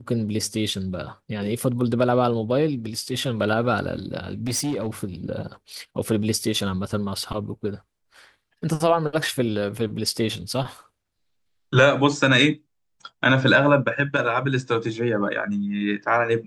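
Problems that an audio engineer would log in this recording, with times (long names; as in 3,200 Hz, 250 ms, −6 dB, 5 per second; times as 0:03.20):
0:04.31–0:04.88: clipping −21 dBFS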